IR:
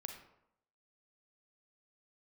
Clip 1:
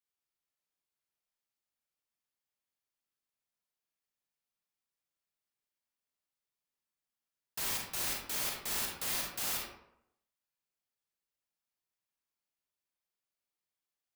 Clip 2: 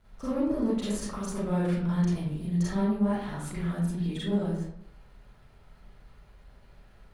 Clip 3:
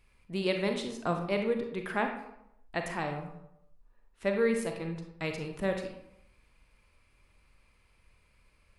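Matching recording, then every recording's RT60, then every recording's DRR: 3; 0.80, 0.80, 0.80 s; -1.0, -10.5, 4.0 dB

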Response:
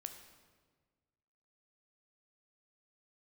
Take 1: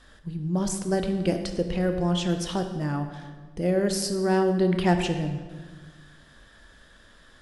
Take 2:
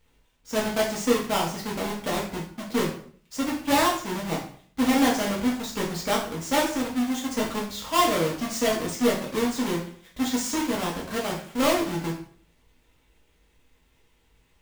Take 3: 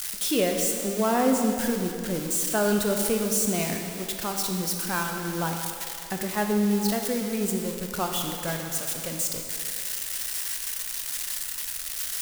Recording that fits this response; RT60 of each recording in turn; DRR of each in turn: 1; 1.5, 0.55, 2.6 s; 6.0, -4.0, 3.0 dB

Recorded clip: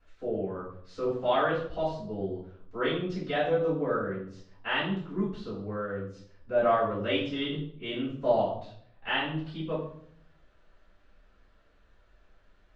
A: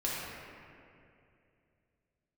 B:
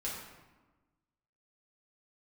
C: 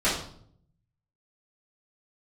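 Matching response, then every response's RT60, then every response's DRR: C; 2.6, 1.2, 0.60 s; -7.0, -7.0, -13.0 dB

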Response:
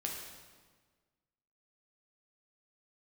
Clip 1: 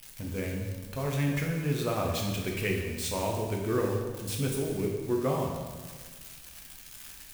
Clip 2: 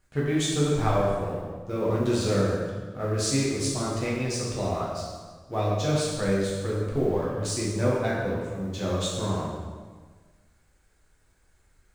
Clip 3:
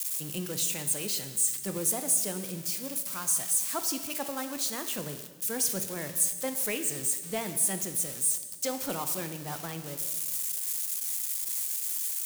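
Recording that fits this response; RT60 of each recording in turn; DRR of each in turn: 1; 1.5, 1.5, 1.5 s; -1.0, -6.5, 7.5 dB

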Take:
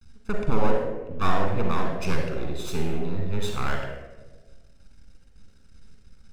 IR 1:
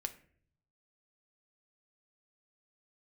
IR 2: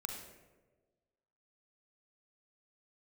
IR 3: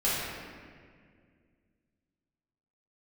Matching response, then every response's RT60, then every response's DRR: 2; 0.55, 1.3, 2.0 s; 6.5, 1.5, -10.5 dB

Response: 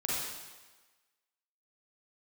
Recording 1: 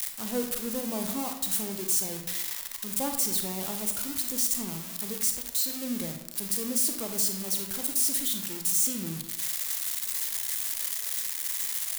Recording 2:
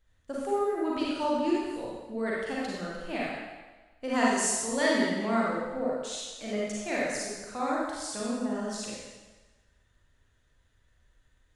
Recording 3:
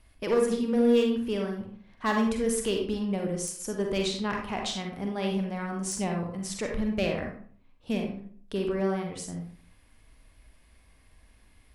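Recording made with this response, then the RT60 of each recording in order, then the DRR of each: 2; 0.90, 1.3, 0.50 s; 4.5, -6.5, 1.5 dB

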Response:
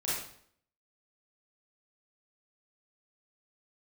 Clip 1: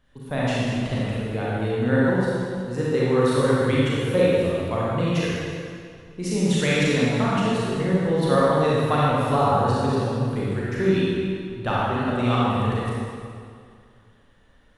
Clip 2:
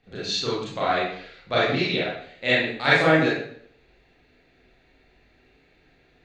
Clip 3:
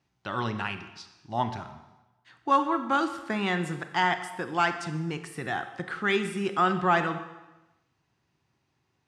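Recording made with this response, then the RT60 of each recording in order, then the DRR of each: 2; 2.3, 0.60, 1.0 s; -7.5, -9.0, 8.5 dB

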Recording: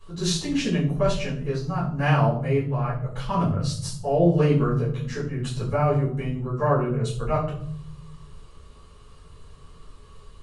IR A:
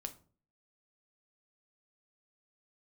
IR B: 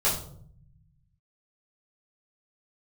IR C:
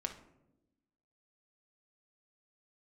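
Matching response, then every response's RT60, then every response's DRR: B; 0.45 s, 0.60 s, not exponential; 6.5, -9.0, 4.0 dB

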